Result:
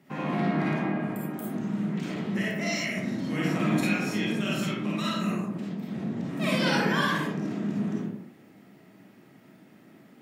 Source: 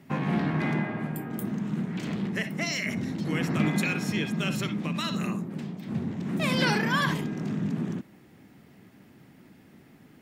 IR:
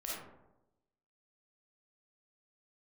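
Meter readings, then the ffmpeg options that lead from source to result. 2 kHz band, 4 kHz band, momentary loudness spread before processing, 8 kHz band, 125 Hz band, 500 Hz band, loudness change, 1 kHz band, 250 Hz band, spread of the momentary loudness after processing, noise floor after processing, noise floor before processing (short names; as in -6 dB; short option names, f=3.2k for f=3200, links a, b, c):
0.0 dB, -0.5 dB, 8 LU, -1.0 dB, -2.0 dB, +2.0 dB, +0.5 dB, +1.0 dB, +1.0 dB, 8 LU, -55 dBFS, -55 dBFS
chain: -filter_complex "[0:a]highpass=140[a];[1:a]atrim=start_sample=2205,afade=t=out:st=0.37:d=0.01,atrim=end_sample=16758[b];[a][b]afir=irnorm=-1:irlink=0"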